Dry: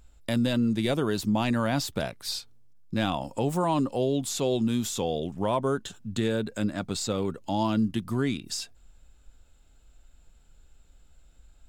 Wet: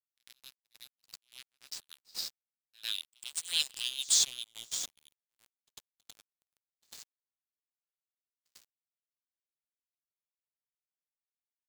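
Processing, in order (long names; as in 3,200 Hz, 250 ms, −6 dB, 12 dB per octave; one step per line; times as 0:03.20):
source passing by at 0:03.70, 15 m/s, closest 2.1 metres
high shelf with overshoot 2,700 Hz +11 dB, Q 1.5
brick-wall band-pass 1,500–9,500 Hz
in parallel at −2.5 dB: downward compressor 6 to 1, threshold −50 dBFS, peak gain reduction 19.5 dB
on the sum: dead-zone distortion −40.5 dBFS
echo ahead of the sound 98 ms −23.5 dB
level +8 dB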